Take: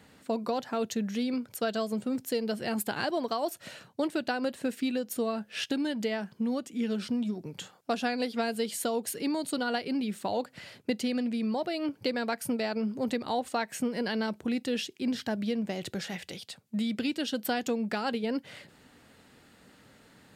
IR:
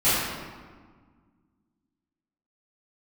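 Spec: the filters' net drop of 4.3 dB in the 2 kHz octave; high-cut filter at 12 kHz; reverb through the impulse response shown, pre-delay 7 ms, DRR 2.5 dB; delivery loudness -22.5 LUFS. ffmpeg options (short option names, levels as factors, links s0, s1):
-filter_complex "[0:a]lowpass=12000,equalizer=f=2000:t=o:g=-6,asplit=2[s0][s1];[1:a]atrim=start_sample=2205,adelay=7[s2];[s1][s2]afir=irnorm=-1:irlink=0,volume=0.1[s3];[s0][s3]amix=inputs=2:normalize=0,volume=2.37"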